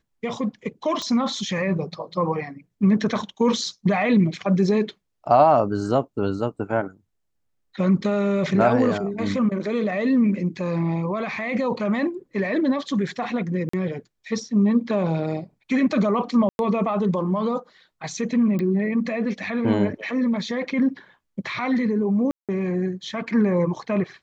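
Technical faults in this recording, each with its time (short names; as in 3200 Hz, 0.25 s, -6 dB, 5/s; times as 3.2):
1.02 pop -16 dBFS
13.69–13.73 gap 44 ms
16.49–16.59 gap 0.101 s
18.59 pop -17 dBFS
22.31–22.49 gap 0.177 s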